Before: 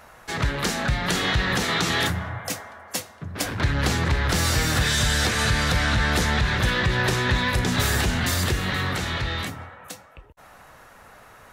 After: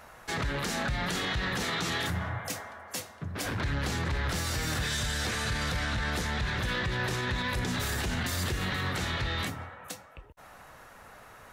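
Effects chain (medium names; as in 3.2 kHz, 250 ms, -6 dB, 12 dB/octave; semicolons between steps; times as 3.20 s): peak limiter -20 dBFS, peak gain reduction 9 dB; trim -2.5 dB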